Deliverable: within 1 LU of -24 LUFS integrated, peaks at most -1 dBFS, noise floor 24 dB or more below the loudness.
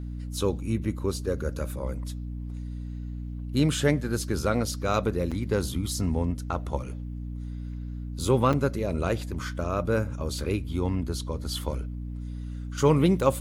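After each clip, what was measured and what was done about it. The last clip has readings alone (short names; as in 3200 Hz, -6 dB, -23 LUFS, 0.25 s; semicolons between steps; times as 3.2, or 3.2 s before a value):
dropouts 2; longest dropout 6.0 ms; hum 60 Hz; harmonics up to 300 Hz; hum level -32 dBFS; loudness -28.5 LUFS; peak -8.0 dBFS; loudness target -24.0 LUFS
-> interpolate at 5.31/8.53, 6 ms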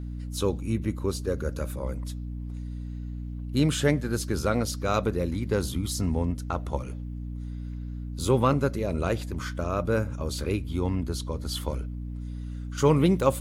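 dropouts 0; hum 60 Hz; harmonics up to 300 Hz; hum level -32 dBFS
-> de-hum 60 Hz, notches 5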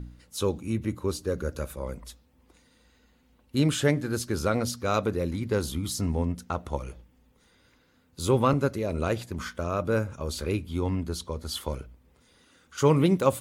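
hum none; loudness -28.5 LUFS; peak -8.0 dBFS; loudness target -24.0 LUFS
-> gain +4.5 dB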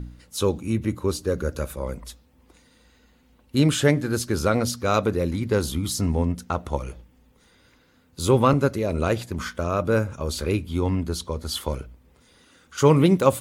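loudness -24.0 LUFS; peak -3.5 dBFS; noise floor -59 dBFS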